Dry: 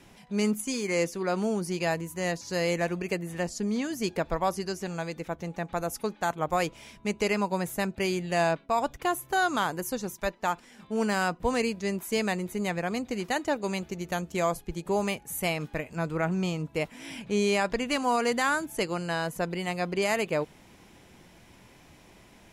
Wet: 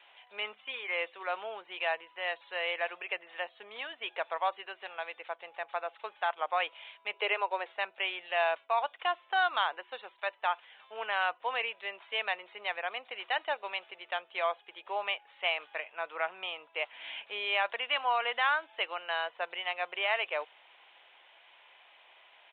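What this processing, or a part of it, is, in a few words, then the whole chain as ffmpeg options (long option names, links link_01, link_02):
musical greeting card: -filter_complex "[0:a]asettb=1/sr,asplit=3[link_01][link_02][link_03];[link_01]atrim=end=7.134[link_04];[link_02]atrim=start=7.13:end=7.73,asetpts=PTS-STARTPTS,afade=type=in:duration=0.004:curve=qsin,afade=type=out:start_time=0.596:duration=0.004:curve=qsin,lowshelf=frequency=260:width_type=q:width=3:gain=-13[link_05];[link_03]atrim=start=7.726[link_06];[link_04][link_05]acrossfade=duration=0.004:curve1=hsin:curve2=qsin[link_07];[link_07][link_06]acrossfade=duration=0.004:curve1=qsin:curve2=hsin,aresample=8000,aresample=44100,highpass=frequency=650:width=0.5412,highpass=frequency=650:width=1.3066,equalizer=frequency=3000:width_type=o:width=0.59:gain=6,volume=-1.5dB"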